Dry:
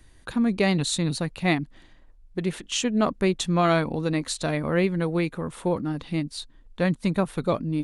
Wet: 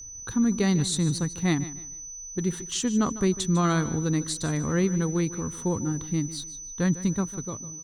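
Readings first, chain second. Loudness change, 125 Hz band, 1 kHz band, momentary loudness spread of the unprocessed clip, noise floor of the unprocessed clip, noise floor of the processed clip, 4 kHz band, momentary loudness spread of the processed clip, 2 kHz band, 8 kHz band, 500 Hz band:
-1.0 dB, +1.0 dB, -5.0 dB, 8 LU, -54 dBFS, -40 dBFS, -3.5 dB, 11 LU, -5.5 dB, +6.5 dB, -5.0 dB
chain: fade out at the end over 0.91 s; fifteen-band graphic EQ 100 Hz +8 dB, 630 Hz -12 dB, 2.5 kHz -11 dB; hysteresis with a dead band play -49.5 dBFS; whistle 6 kHz -39 dBFS; on a send: feedback delay 150 ms, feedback 27%, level -15.5 dB

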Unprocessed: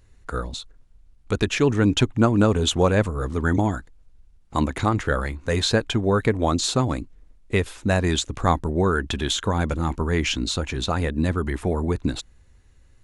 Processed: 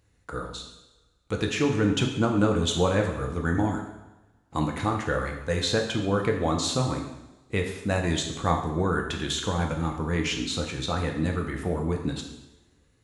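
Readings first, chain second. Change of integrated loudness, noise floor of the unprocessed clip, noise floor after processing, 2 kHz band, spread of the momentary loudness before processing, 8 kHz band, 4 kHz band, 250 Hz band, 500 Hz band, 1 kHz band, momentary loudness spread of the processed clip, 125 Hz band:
-4.0 dB, -54 dBFS, -65 dBFS, -3.5 dB, 10 LU, -3.5 dB, -3.5 dB, -4.0 dB, -4.0 dB, -3.5 dB, 12 LU, -4.5 dB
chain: high-pass 72 Hz; two-slope reverb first 0.89 s, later 2.3 s, from -23 dB, DRR 1.5 dB; trim -6 dB

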